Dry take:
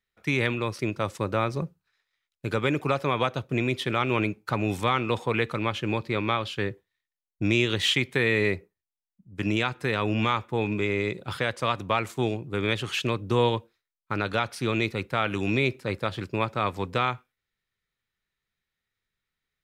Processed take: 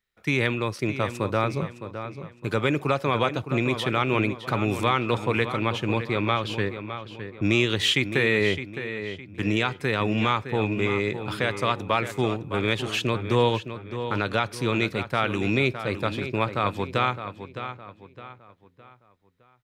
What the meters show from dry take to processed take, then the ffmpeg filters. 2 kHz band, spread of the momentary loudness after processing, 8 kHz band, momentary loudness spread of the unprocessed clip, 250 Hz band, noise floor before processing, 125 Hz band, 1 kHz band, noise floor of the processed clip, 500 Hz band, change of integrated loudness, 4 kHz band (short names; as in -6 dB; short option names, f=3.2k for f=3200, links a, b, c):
+2.0 dB, 13 LU, +1.5 dB, 7 LU, +2.0 dB, under -85 dBFS, +2.0 dB, +2.0 dB, -59 dBFS, +2.0 dB, +1.5 dB, +2.0 dB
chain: -filter_complex "[0:a]asplit=2[a][b];[b]adelay=612,lowpass=f=4.3k:p=1,volume=-10dB,asplit=2[c][d];[d]adelay=612,lowpass=f=4.3k:p=1,volume=0.39,asplit=2[e][f];[f]adelay=612,lowpass=f=4.3k:p=1,volume=0.39,asplit=2[g][h];[h]adelay=612,lowpass=f=4.3k:p=1,volume=0.39[i];[a][c][e][g][i]amix=inputs=5:normalize=0,volume=1.5dB"